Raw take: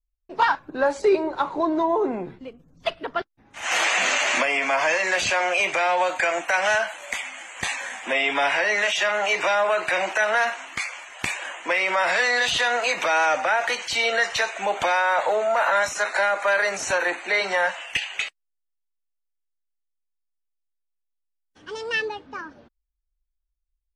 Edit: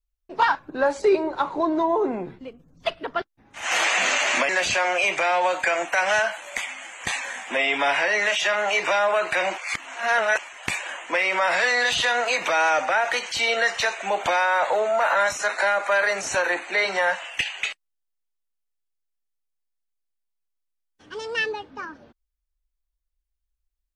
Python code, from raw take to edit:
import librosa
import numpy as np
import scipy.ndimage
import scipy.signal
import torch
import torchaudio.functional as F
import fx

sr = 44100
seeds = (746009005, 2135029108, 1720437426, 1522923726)

y = fx.edit(x, sr, fx.cut(start_s=4.49, length_s=0.56),
    fx.reverse_span(start_s=10.14, length_s=0.81), tone=tone)